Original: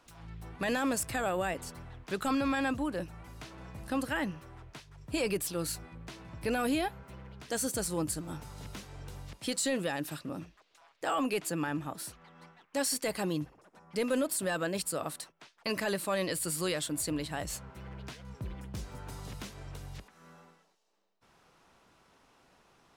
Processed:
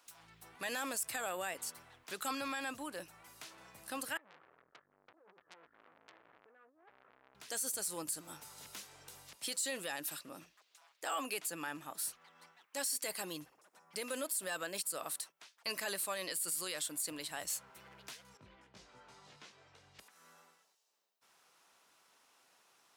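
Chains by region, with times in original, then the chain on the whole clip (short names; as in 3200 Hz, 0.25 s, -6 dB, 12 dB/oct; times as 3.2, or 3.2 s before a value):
4.17–7.35 negative-ratio compressor -39 dBFS, ratio -0.5 + rippled Chebyshev low-pass 1800 Hz, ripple 9 dB + core saturation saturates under 2900 Hz
18.37–19.99 air absorption 140 m + detuned doubles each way 11 cents
whole clip: HPF 880 Hz 6 dB/oct; high shelf 6200 Hz +11 dB; limiter -23.5 dBFS; gain -3.5 dB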